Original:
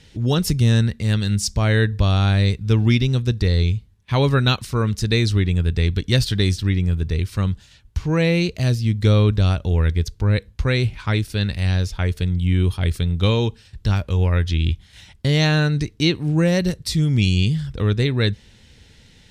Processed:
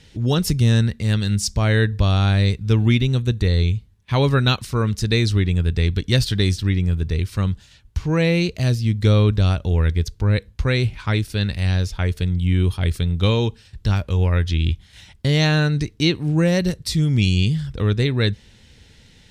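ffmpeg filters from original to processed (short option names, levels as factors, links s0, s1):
-filter_complex "[0:a]asettb=1/sr,asplit=3[s0][s1][s2];[s0]atrim=end=2.764[s3];[s1]atrim=start=2.76:end=3.75,asetpts=PTS-STARTPTS,afade=t=in:d=0.004:c=qsin,afade=t=out:st=0.986:d=0.004:c=qsin,asuperstop=centerf=5100:order=4:qfactor=4[s4];[s2]atrim=start=3.746[s5];[s3][s4]acrossfade=d=0.004:c1=hsin:c2=qsin[s6];[s6][s5]acrossfade=d=0.004:c1=qsin:c2=hsin"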